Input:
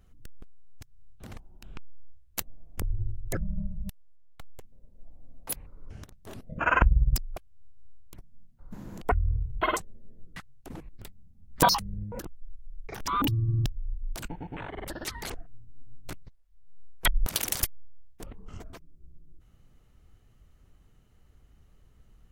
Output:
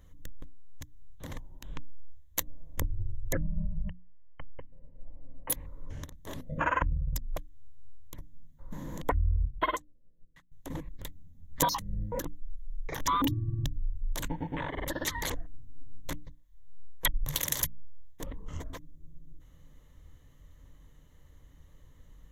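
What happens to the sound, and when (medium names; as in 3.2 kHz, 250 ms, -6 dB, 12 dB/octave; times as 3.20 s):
3.33–5.50 s: brick-wall FIR low-pass 3.1 kHz
9.45–10.52 s: upward expansion 2.5:1, over -37 dBFS
17.25–17.65 s: frequency shift -150 Hz
whole clip: hum notches 60/120/180/240/300 Hz; compression 8:1, threshold -28 dBFS; rippled EQ curve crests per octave 1.1, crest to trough 9 dB; trim +2.5 dB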